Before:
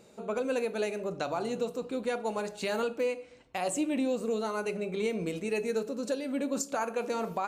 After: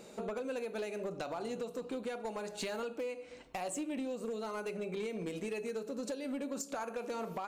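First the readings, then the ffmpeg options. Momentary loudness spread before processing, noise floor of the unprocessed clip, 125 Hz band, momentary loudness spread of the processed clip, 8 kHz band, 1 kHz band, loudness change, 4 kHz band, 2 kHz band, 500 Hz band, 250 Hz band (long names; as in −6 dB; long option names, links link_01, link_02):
4 LU, −56 dBFS, −6.0 dB, 2 LU, −6.0 dB, −7.0 dB, −7.0 dB, −5.5 dB, −7.0 dB, −7.0 dB, −7.0 dB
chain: -af "equalizer=frequency=100:width_type=o:width=0.54:gain=-14,acompressor=threshold=-40dB:ratio=12,asoftclip=type=hard:threshold=-37.5dB,volume=5dB"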